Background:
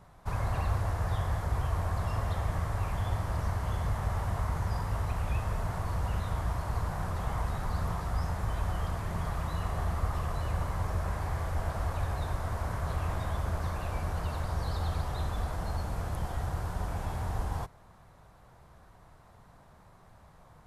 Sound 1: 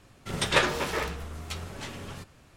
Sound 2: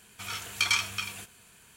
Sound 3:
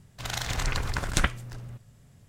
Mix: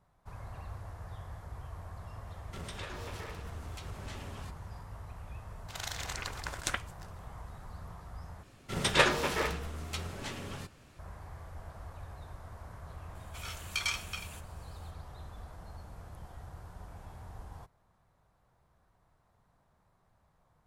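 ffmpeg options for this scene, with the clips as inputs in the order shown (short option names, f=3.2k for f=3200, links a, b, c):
-filter_complex "[1:a]asplit=2[a][b];[0:a]volume=-14dB[c];[a]acompressor=threshold=-35dB:ratio=6:attack=3.2:release=140:knee=1:detection=peak[d];[3:a]bass=f=250:g=-14,treble=f=4k:g=2[e];[c]asplit=2[f][g];[f]atrim=end=8.434[h];[b]atrim=end=2.56,asetpts=PTS-STARTPTS,volume=-1.5dB[i];[g]atrim=start=10.986[j];[d]atrim=end=2.56,asetpts=PTS-STARTPTS,volume=-6dB,afade=t=in:d=0.004:c=hsin,afade=t=out:st=2.556:d=0.004:c=hsin,adelay=2270[k];[e]atrim=end=2.28,asetpts=PTS-STARTPTS,volume=-7.5dB,afade=t=in:d=0.004:c=hsin,afade=t=out:st=2.276:d=0.004:c=hsin,adelay=5500[l];[2:a]atrim=end=1.76,asetpts=PTS-STARTPTS,volume=-7.5dB,afade=t=in:d=0.004:c=hsin,afade=t=out:st=1.756:d=0.004:c=hsin,adelay=13150[m];[h][i]acrossfade=d=0.004:c1=hsin:c2=hsin[n];[n][j]acrossfade=d=0.004:c1=hsin:c2=hsin[o];[o][k][l][m]amix=inputs=4:normalize=0"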